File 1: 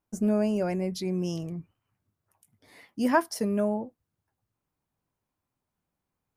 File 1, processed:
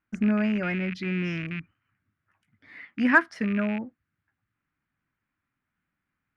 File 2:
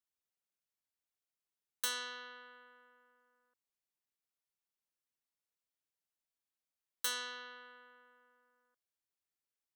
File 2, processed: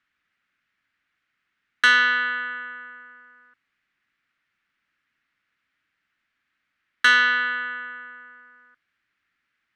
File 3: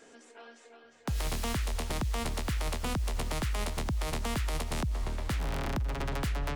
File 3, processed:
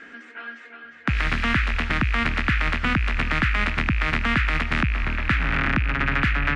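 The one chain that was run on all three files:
loose part that buzzes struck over −34 dBFS, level −32 dBFS
low-pass with resonance 1,900 Hz, resonance Q 1.6
flat-topped bell 630 Hz −12.5 dB
harmonic generator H 7 −40 dB, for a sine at −13 dBFS
low-shelf EQ 280 Hz −8.5 dB
normalise the peak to −6 dBFS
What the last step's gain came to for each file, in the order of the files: +8.0, +25.0, +16.5 decibels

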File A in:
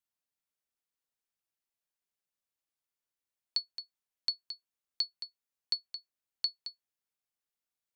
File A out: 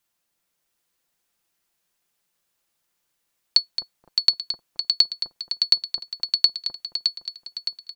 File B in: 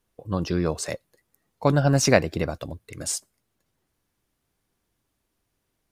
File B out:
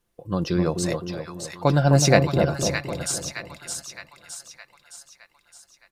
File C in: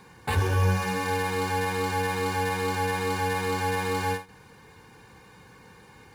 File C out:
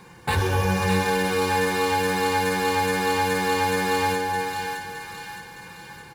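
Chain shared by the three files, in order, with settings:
dynamic equaliser 3,900 Hz, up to +5 dB, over −51 dBFS, Q 4.9
comb filter 5.8 ms, depth 34%
on a send: echo with a time of its own for lows and highs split 1,000 Hz, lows 257 ms, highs 615 ms, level −5 dB
on the sum: loudness normalisation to −23 LKFS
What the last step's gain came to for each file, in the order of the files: +14.5, 0.0, +3.5 decibels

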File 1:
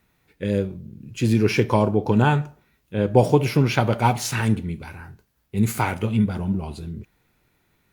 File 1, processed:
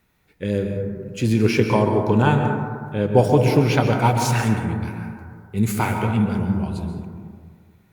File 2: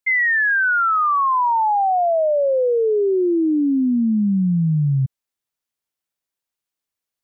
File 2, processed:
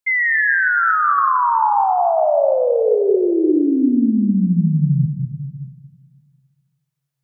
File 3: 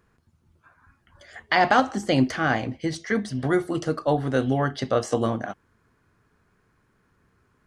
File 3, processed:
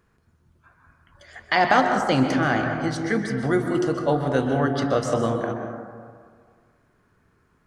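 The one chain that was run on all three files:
dense smooth reverb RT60 1.9 s, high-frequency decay 0.25×, pre-delay 115 ms, DRR 4 dB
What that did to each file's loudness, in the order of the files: +1.5, +2.0, +1.5 LU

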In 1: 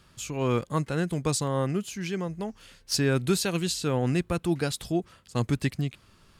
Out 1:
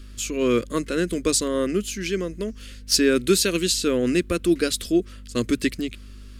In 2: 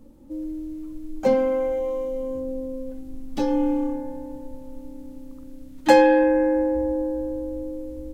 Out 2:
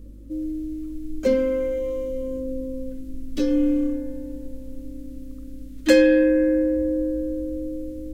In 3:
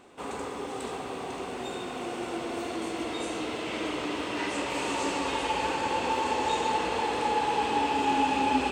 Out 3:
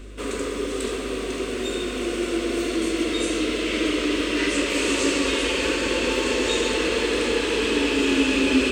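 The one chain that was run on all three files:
mains hum 50 Hz, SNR 18 dB
phaser with its sweep stopped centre 340 Hz, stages 4
loudness normalisation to −23 LKFS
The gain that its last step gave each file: +8.5, +3.0, +10.5 decibels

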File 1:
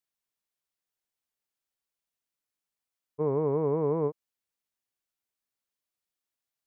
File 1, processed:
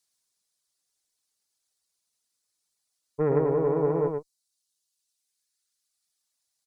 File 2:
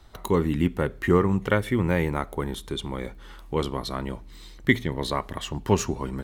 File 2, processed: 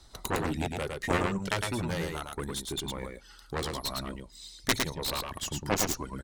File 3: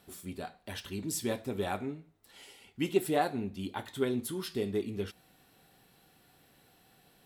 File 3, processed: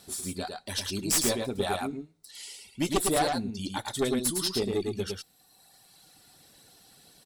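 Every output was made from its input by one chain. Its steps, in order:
reverb reduction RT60 1.7 s
flat-topped bell 6,400 Hz +11 dB
wrap-around overflow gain 6 dB
harmonic generator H 4 −14 dB, 6 −11 dB, 7 −8 dB, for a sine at −6 dBFS
on a send: single-tap delay 108 ms −4 dB
on the sum: normalise the peak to −12 dBFS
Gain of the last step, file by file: 0.0, −9.0, −0.5 decibels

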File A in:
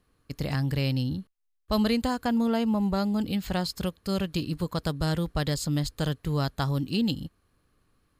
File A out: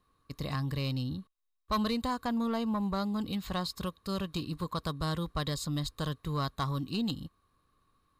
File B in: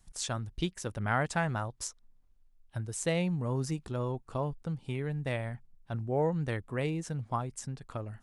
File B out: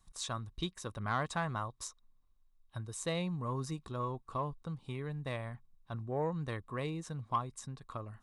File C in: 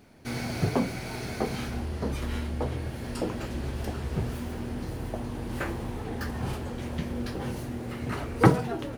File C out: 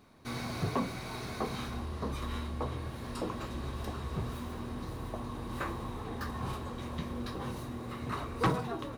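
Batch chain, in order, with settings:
hollow resonant body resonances 1,100/3,800 Hz, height 14 dB, ringing for 25 ms
soft clipping −16.5 dBFS
level −5.5 dB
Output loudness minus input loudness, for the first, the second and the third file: −5.5, −4.5, −6.0 LU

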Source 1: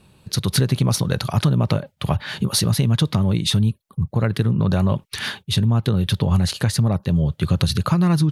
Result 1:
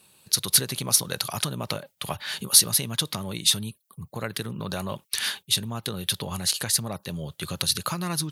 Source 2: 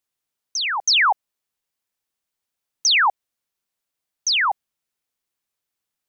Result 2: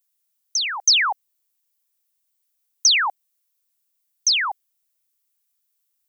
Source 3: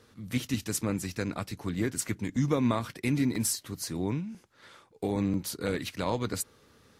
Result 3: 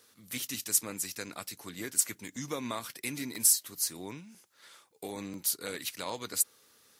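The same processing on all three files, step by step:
RIAA equalisation recording
level −5.5 dB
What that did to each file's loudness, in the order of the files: −4.5, 0.0, 0.0 LU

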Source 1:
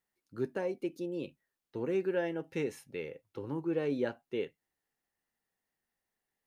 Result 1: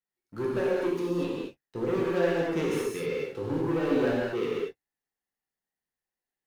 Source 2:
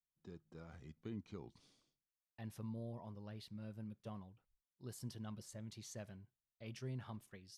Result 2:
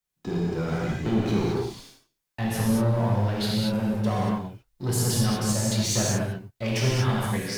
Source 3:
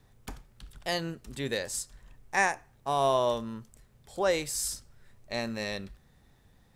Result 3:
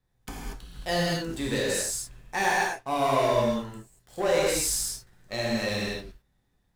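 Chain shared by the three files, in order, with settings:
leveller curve on the samples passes 3
reverb whose tail is shaped and stops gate 260 ms flat, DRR −5.5 dB
normalise the peak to −12 dBFS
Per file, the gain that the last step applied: −6.5, +12.0, −10.5 decibels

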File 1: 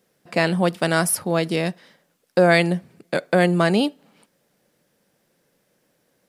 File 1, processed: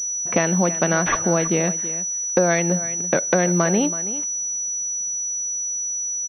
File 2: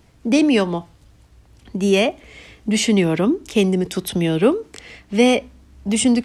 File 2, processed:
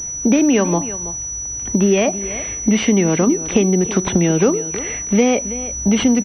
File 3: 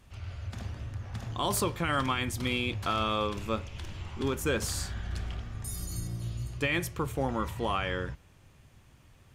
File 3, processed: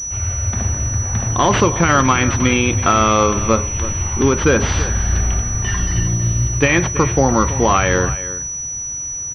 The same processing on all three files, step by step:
downward compressor 4 to 1, threshold −25 dBFS
single-tap delay 327 ms −14.5 dB
switching amplifier with a slow clock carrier 5,900 Hz
normalise the peak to −2 dBFS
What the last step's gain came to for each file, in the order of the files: +8.0, +11.5, +17.0 decibels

